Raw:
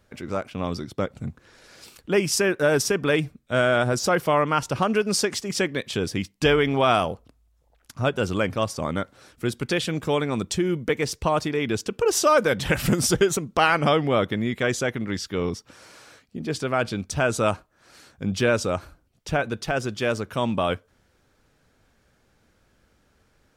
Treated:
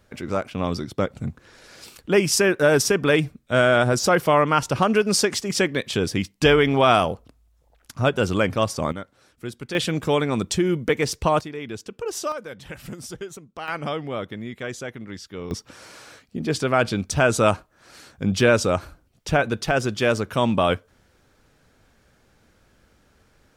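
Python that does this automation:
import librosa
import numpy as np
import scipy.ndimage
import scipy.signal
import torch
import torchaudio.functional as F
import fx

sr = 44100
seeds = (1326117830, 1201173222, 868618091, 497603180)

y = fx.gain(x, sr, db=fx.steps((0.0, 3.0), (8.92, -7.0), (9.75, 2.5), (11.41, -8.0), (12.32, -15.0), (13.68, -8.0), (15.51, 4.0)))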